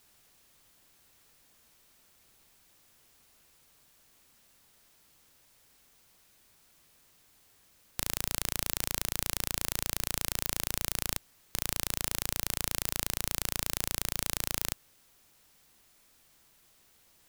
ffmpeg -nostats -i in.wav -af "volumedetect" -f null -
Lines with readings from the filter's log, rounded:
mean_volume: -38.3 dB
max_volume: -2.7 dB